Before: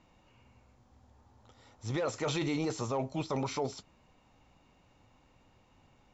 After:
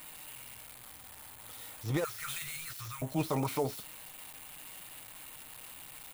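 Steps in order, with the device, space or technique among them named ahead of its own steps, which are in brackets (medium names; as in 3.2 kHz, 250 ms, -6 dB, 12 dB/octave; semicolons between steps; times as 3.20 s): 2.04–3.02 s: elliptic band-stop 100–1400 Hz; low-pass 5.6 kHz 12 dB/octave; comb 6.5 ms, depth 38%; budget class-D amplifier (dead-time distortion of 0.083 ms; zero-crossing glitches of -32.5 dBFS); trim +1 dB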